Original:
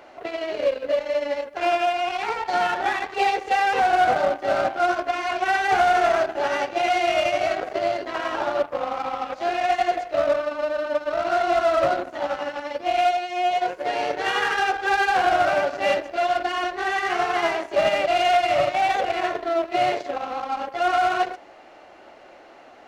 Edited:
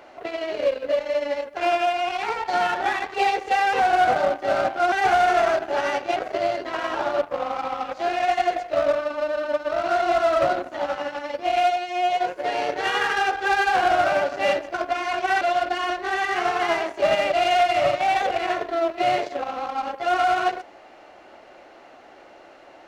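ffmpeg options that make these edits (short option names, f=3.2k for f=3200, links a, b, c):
-filter_complex "[0:a]asplit=5[a][b][c][d][e];[a]atrim=end=4.922[f];[b]atrim=start=5.588:end=6.832[g];[c]atrim=start=7.568:end=16.152[h];[d]atrim=start=4.918:end=5.592[i];[e]atrim=start=16.148[j];[f][g]acrossfade=d=0.004:c1=hsin:c2=hsin[k];[k][h]acrossfade=d=0.004:c1=hsin:c2=hsin[l];[l][i]acrossfade=d=0.004:c1=hsin:c2=hsin[m];[m][j]acrossfade=d=0.004:c1=hsin:c2=hsin"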